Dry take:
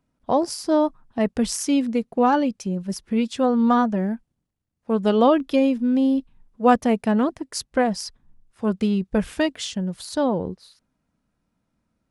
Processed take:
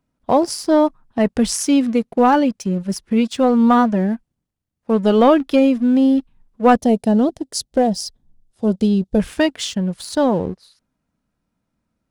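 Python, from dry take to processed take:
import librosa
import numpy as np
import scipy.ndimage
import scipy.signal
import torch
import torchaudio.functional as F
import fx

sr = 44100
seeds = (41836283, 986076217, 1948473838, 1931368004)

y = fx.leveller(x, sr, passes=1)
y = fx.band_shelf(y, sr, hz=1600.0, db=-11.0, octaves=1.7, at=(6.76, 9.2))
y = y * 10.0 ** (1.5 / 20.0)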